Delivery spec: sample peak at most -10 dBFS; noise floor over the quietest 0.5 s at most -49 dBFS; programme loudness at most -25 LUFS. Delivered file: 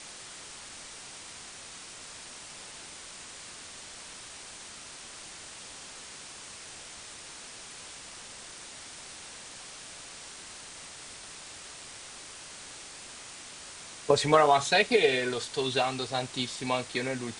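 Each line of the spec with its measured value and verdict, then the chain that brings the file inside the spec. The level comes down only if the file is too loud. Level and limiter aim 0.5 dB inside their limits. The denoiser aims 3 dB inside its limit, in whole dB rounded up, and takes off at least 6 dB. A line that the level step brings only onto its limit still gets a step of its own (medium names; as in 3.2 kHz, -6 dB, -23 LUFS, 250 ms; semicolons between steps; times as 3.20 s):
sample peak -6.5 dBFS: fail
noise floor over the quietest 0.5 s -46 dBFS: fail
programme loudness -33.0 LUFS: pass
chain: noise reduction 6 dB, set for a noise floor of -46 dBFS; peak limiter -10.5 dBFS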